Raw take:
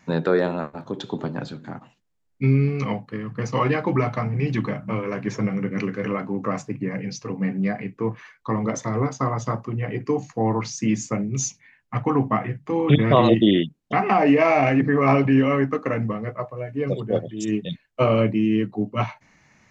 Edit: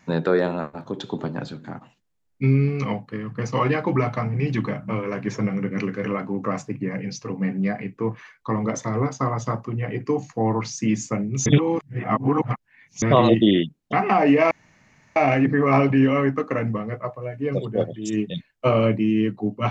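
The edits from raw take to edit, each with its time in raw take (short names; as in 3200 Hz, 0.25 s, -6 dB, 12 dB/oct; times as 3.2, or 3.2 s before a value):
11.46–13.02 reverse
14.51 insert room tone 0.65 s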